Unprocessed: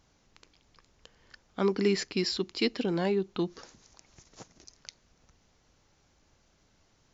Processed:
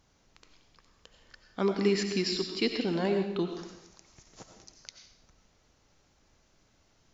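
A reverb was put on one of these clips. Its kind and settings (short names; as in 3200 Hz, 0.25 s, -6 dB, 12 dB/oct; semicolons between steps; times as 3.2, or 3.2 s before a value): digital reverb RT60 0.78 s, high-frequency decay 0.95×, pre-delay 50 ms, DRR 4.5 dB; gain -1 dB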